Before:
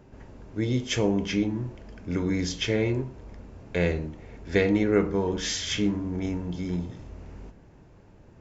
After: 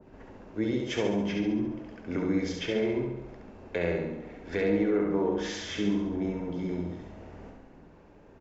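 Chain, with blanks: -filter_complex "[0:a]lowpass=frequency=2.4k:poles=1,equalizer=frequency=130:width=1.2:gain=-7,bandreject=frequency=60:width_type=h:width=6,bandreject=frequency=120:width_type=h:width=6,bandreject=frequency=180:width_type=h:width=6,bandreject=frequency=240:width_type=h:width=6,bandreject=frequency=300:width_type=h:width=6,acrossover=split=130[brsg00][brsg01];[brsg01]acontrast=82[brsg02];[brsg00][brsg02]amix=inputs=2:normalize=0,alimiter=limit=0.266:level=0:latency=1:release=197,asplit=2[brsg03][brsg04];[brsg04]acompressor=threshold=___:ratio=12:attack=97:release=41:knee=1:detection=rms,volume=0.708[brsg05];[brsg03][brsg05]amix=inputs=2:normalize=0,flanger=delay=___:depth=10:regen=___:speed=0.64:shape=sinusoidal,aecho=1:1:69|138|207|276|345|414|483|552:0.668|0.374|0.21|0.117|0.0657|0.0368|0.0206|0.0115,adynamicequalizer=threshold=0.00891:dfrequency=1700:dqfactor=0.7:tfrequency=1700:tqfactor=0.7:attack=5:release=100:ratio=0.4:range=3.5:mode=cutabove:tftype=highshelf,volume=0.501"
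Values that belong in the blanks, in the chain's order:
0.0316, 0.2, 70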